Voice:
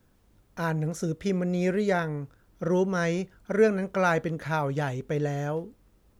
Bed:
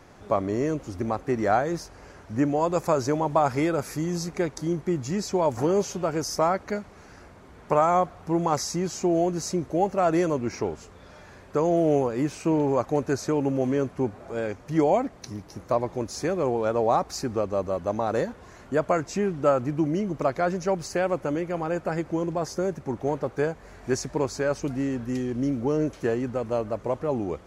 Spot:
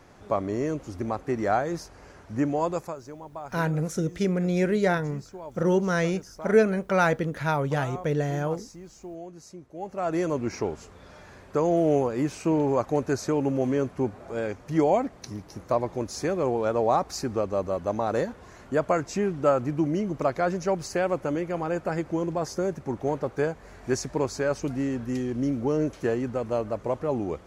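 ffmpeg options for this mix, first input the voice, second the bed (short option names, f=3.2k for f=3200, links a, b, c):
-filter_complex "[0:a]adelay=2950,volume=2dB[a];[1:a]volume=14.5dB,afade=t=out:st=2.66:d=0.3:silence=0.177828,afade=t=in:st=9.74:d=0.69:silence=0.149624[b];[a][b]amix=inputs=2:normalize=0"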